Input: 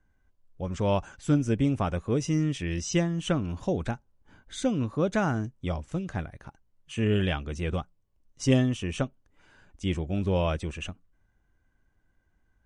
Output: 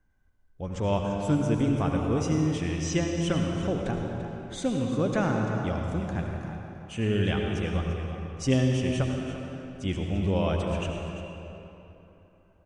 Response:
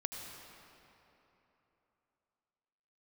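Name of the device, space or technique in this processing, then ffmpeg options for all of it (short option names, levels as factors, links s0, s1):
cave: -filter_complex "[0:a]aecho=1:1:342:0.237[s0];[1:a]atrim=start_sample=2205[s1];[s0][s1]afir=irnorm=-1:irlink=0"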